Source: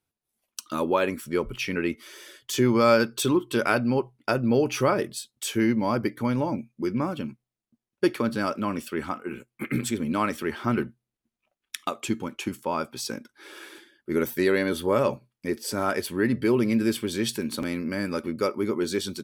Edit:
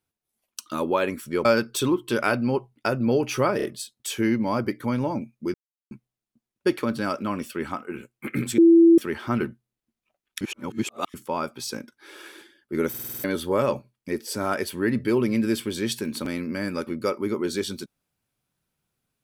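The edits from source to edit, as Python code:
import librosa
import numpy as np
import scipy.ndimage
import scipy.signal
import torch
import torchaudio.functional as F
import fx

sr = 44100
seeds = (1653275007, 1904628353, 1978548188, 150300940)

y = fx.edit(x, sr, fx.cut(start_s=1.45, length_s=1.43),
    fx.stutter(start_s=5.0, slice_s=0.03, count=3),
    fx.silence(start_s=6.91, length_s=0.37),
    fx.bleep(start_s=9.95, length_s=0.4, hz=334.0, db=-10.0),
    fx.reverse_span(start_s=11.78, length_s=0.73),
    fx.stutter_over(start_s=14.26, slice_s=0.05, count=7), tone=tone)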